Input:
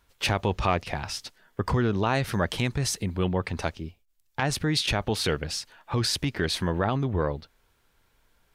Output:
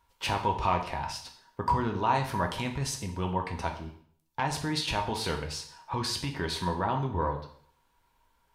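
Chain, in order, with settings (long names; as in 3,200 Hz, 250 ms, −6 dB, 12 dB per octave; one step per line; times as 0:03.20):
parametric band 950 Hz +14 dB 0.27 octaves
on a send: convolution reverb RT60 0.55 s, pre-delay 4 ms, DRR 3 dB
on the sum: level −7 dB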